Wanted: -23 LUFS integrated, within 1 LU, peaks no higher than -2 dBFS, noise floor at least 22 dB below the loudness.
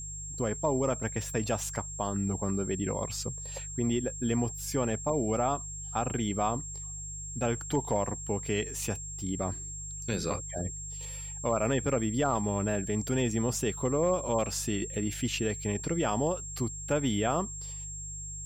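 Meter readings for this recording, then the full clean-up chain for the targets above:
hum 50 Hz; harmonics up to 150 Hz; hum level -41 dBFS; steady tone 7500 Hz; tone level -39 dBFS; loudness -31.5 LUFS; peak -16.5 dBFS; loudness target -23.0 LUFS
-> de-hum 50 Hz, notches 3; notch 7500 Hz, Q 30; gain +8.5 dB

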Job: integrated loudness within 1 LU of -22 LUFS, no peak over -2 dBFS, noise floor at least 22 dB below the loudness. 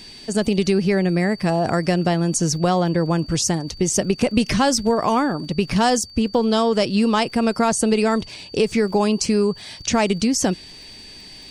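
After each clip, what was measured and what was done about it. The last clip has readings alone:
ticks 44/s; steady tone 4600 Hz; tone level -40 dBFS; loudness -20.0 LUFS; peak -3.0 dBFS; loudness target -22.0 LUFS
-> de-click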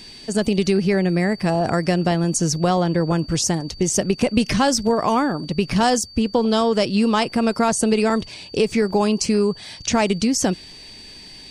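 ticks 0.17/s; steady tone 4600 Hz; tone level -40 dBFS
-> notch 4600 Hz, Q 30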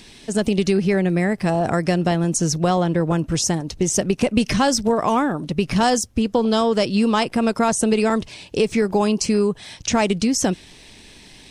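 steady tone none; loudness -20.0 LUFS; peak -3.0 dBFS; loudness target -22.0 LUFS
-> gain -2 dB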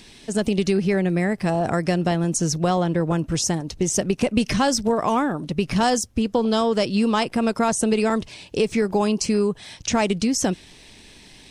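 loudness -22.0 LUFS; peak -5.0 dBFS; noise floor -47 dBFS

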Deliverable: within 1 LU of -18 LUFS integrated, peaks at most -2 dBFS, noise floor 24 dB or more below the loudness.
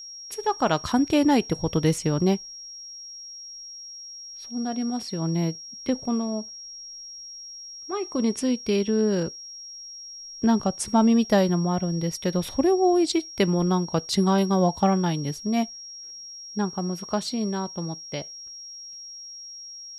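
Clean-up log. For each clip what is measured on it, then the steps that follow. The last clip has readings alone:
steady tone 5600 Hz; tone level -38 dBFS; loudness -24.5 LUFS; peak -7.0 dBFS; loudness target -18.0 LUFS
-> notch 5600 Hz, Q 30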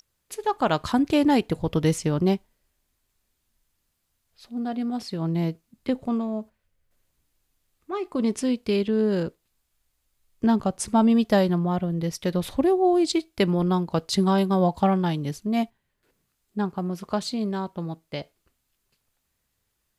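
steady tone none; loudness -24.5 LUFS; peak -7.0 dBFS; loudness target -18.0 LUFS
-> gain +6.5 dB; limiter -2 dBFS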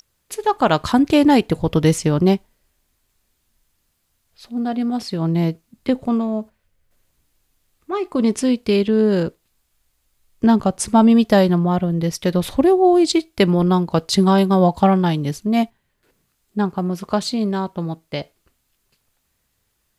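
loudness -18.0 LUFS; peak -2.0 dBFS; noise floor -69 dBFS

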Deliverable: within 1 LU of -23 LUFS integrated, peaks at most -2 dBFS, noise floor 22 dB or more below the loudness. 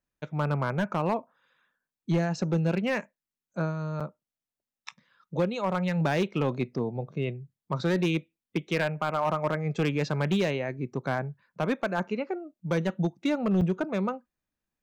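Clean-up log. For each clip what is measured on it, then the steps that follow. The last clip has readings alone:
clipped 0.9%; flat tops at -19.0 dBFS; dropouts 2; longest dropout 6.0 ms; loudness -29.5 LUFS; peak -19.0 dBFS; loudness target -23.0 LUFS
-> clip repair -19 dBFS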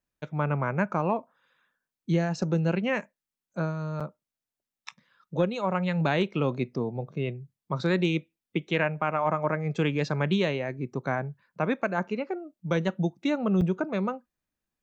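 clipped 0.0%; dropouts 2; longest dropout 6.0 ms
-> interpolate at 4/13.61, 6 ms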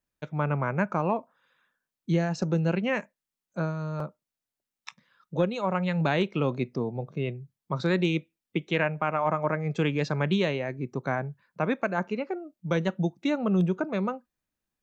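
dropouts 0; loudness -28.5 LUFS; peak -10.5 dBFS; loudness target -23.0 LUFS
-> gain +5.5 dB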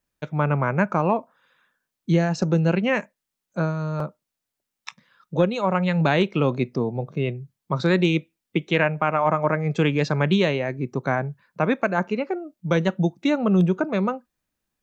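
loudness -23.0 LUFS; peak -5.0 dBFS; noise floor -84 dBFS

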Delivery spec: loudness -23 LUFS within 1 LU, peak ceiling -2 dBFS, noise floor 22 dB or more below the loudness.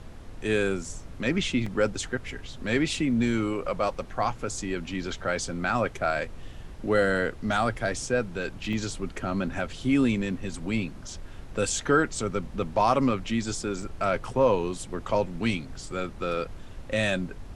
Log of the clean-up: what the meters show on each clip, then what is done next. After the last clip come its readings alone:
dropouts 3; longest dropout 4.2 ms; noise floor -42 dBFS; noise floor target -50 dBFS; loudness -28.0 LUFS; peak -9.5 dBFS; loudness target -23.0 LUFS
-> interpolate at 1.66/8.73/13.82, 4.2 ms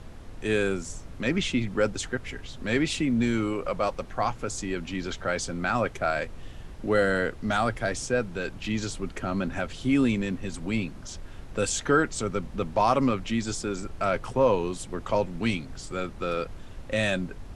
dropouts 0; noise floor -42 dBFS; noise floor target -50 dBFS
-> noise print and reduce 8 dB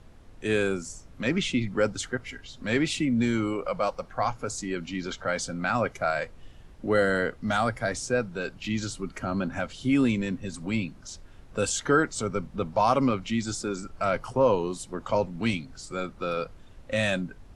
noise floor -50 dBFS; loudness -28.0 LUFS; peak -10.0 dBFS; loudness target -23.0 LUFS
-> gain +5 dB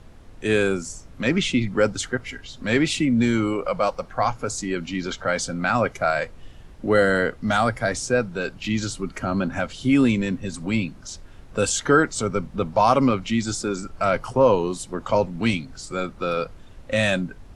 loudness -23.0 LUFS; peak -5.0 dBFS; noise floor -45 dBFS

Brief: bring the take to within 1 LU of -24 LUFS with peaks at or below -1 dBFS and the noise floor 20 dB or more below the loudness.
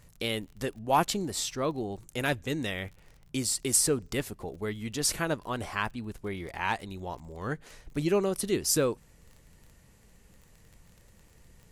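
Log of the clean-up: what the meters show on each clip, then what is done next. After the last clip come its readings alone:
ticks 28/s; loudness -30.5 LUFS; peak -12.0 dBFS; loudness target -24.0 LUFS
-> de-click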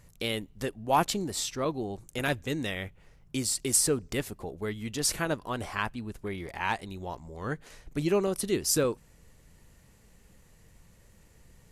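ticks 0/s; loudness -30.5 LUFS; peak -12.0 dBFS; loudness target -24.0 LUFS
-> gain +6.5 dB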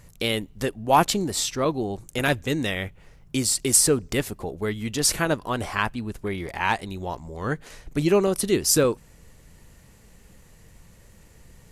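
loudness -24.0 LUFS; peak -5.5 dBFS; noise floor -53 dBFS

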